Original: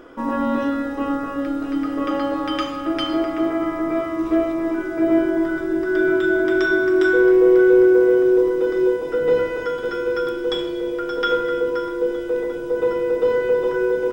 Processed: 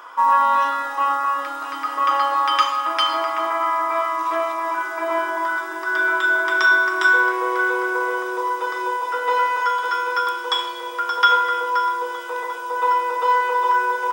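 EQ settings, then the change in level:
high-pass with resonance 990 Hz, resonance Q 6.4
high-shelf EQ 2,800 Hz +9.5 dB
0.0 dB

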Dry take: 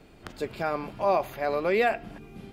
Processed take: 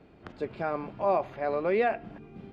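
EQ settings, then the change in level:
high-pass filter 82 Hz 6 dB per octave
head-to-tape spacing loss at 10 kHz 26 dB
0.0 dB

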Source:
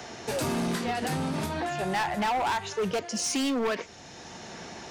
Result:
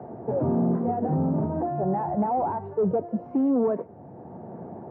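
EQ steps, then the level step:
high-pass filter 100 Hz 24 dB per octave
transistor ladder low-pass 970 Hz, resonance 25%
spectral tilt −2.5 dB per octave
+6.5 dB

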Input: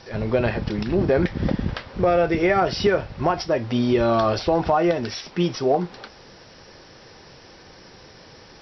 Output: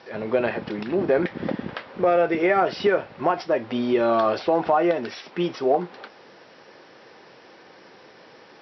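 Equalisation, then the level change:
band-pass filter 260–3,200 Hz
0.0 dB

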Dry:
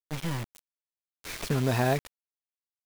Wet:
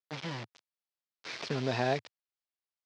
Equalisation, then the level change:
elliptic band-pass filter 110–5,100 Hz, stop band 60 dB
low-shelf EQ 220 Hz −12 dB
dynamic equaliser 1,200 Hz, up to −5 dB, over −44 dBFS, Q 1.2
0.0 dB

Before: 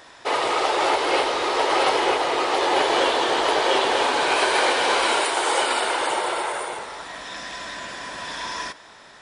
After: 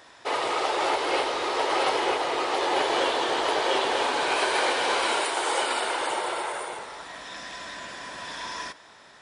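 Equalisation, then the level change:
high-pass filter 41 Hz
−4.5 dB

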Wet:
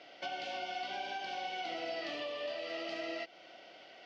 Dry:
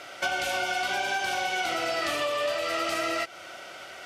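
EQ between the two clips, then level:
high-frequency loss of the air 120 metres
loudspeaker in its box 300–4,600 Hz, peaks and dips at 380 Hz −8 dB, 570 Hz −6 dB, 900 Hz −5 dB, 1,300 Hz −8 dB, 2,400 Hz −5 dB, 3,700 Hz −6 dB
parametric band 1,400 Hz −12 dB 1.3 octaves
−1.0 dB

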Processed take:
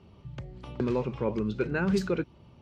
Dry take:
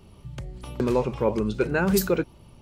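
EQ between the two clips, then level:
high-pass filter 66 Hz
dynamic equaliser 700 Hz, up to −6 dB, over −35 dBFS, Q 1
high-frequency loss of the air 140 metres
−2.5 dB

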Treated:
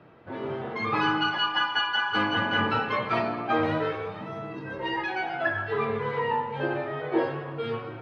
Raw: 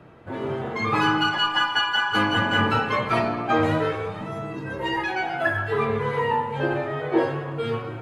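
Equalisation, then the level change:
Savitzky-Golay smoothing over 15 samples
low-shelf EQ 80 Hz −11.5 dB
−3.5 dB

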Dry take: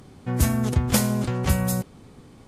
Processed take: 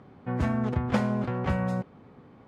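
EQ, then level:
high-pass filter 200 Hz 6 dB per octave
low-pass filter 1,800 Hz 12 dB per octave
parametric band 340 Hz −3 dB 0.63 octaves
0.0 dB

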